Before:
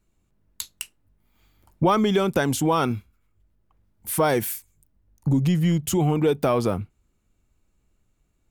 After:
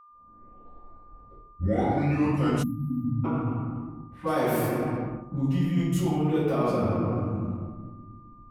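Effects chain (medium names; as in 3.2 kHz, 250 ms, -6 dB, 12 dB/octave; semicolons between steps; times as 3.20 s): tape start-up on the opening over 2.78 s; reverberation RT60 1.5 s, pre-delay 46 ms; reverse; compression 4:1, threshold -25 dBFS, peak gain reduction 17.5 dB; reverse; level-controlled noise filter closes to 590 Hz, open at -22 dBFS; spectral selection erased 2.63–3.24 s, 280–11000 Hz; whistle 1.2 kHz -51 dBFS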